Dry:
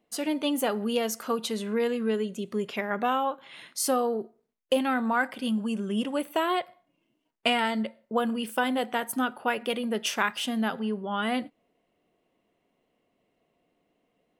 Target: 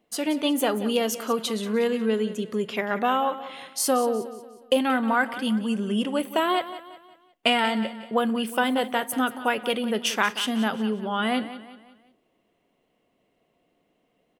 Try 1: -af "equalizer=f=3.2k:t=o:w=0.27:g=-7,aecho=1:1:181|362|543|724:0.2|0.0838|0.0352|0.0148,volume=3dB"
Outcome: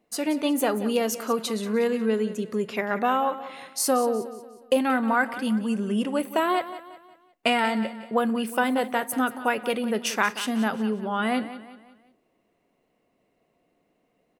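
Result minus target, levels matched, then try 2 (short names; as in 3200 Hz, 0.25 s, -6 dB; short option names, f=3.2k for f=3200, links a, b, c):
4000 Hz band -4.5 dB
-af "equalizer=f=3.2k:t=o:w=0.27:g=2,aecho=1:1:181|362|543|724:0.2|0.0838|0.0352|0.0148,volume=3dB"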